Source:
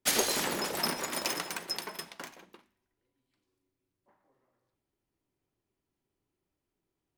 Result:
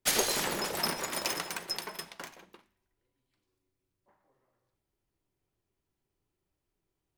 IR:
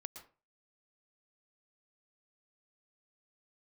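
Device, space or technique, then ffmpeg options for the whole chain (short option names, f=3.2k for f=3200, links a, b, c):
low shelf boost with a cut just above: -af "lowshelf=f=69:g=8,equalizer=f=260:t=o:w=0.52:g=-4.5"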